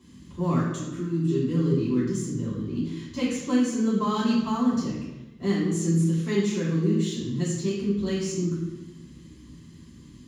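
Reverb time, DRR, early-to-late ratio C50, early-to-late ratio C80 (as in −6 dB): 1.1 s, −9.0 dB, 1.5 dB, 4.0 dB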